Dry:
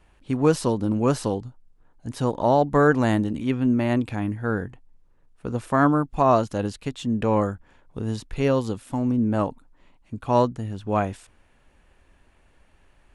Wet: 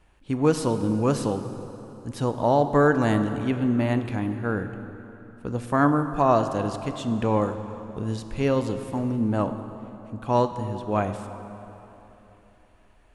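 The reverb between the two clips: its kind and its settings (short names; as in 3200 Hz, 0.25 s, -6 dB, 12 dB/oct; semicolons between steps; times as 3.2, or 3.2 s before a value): plate-style reverb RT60 3.5 s, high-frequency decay 0.7×, DRR 8.5 dB; gain -1.5 dB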